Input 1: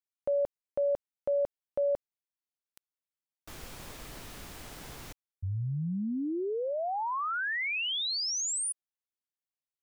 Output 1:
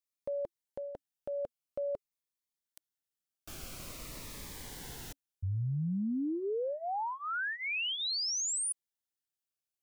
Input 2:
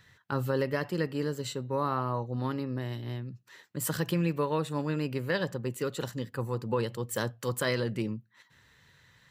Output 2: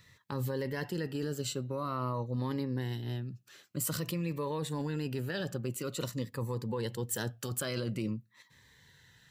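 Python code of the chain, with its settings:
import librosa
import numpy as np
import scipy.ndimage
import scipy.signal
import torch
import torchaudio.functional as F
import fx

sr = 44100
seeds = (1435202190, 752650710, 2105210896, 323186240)

p1 = fx.high_shelf(x, sr, hz=3600.0, db=3.5)
p2 = fx.over_compress(p1, sr, threshold_db=-32.0, ratio=-0.5)
p3 = p1 + (p2 * 10.0 ** (1.0 / 20.0))
p4 = fx.notch_cascade(p3, sr, direction='falling', hz=0.49)
y = p4 * 10.0 ** (-8.0 / 20.0)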